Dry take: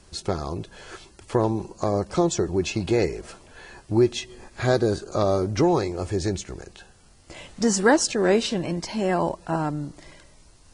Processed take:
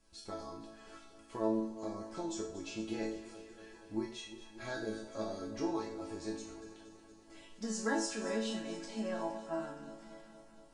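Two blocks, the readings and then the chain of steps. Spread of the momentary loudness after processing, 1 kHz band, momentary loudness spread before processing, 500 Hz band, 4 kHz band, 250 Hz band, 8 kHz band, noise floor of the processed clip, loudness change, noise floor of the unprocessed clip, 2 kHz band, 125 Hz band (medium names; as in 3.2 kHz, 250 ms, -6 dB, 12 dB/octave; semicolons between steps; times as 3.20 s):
20 LU, -15.5 dB, 18 LU, -16.5 dB, -14.0 dB, -13.5 dB, -15.0 dB, -59 dBFS, -15.5 dB, -53 dBFS, -14.0 dB, -24.0 dB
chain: chord resonator A3 major, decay 0.48 s; echo whose repeats swap between lows and highs 117 ms, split 1.1 kHz, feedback 84%, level -12 dB; trim +4.5 dB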